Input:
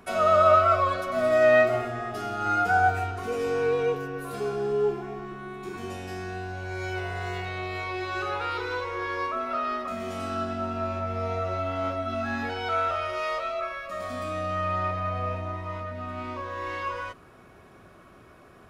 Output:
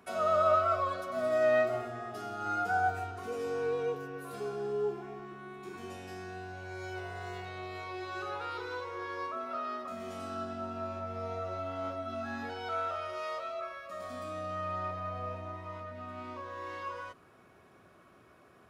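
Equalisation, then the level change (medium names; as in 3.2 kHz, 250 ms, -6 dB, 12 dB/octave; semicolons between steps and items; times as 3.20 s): dynamic bell 2.3 kHz, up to -5 dB, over -44 dBFS, Q 1.6; high-pass 65 Hz; bass shelf 180 Hz -3.5 dB; -7.0 dB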